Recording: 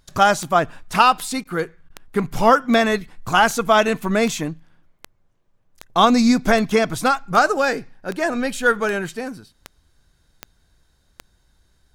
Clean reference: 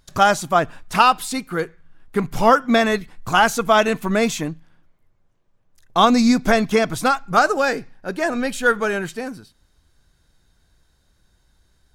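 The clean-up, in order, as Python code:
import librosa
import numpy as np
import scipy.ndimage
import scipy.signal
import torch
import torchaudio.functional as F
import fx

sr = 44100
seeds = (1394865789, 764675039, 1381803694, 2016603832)

y = fx.fix_declick_ar(x, sr, threshold=10.0)
y = fx.fix_interpolate(y, sr, at_s=(1.44, 1.89), length_ms=11.0)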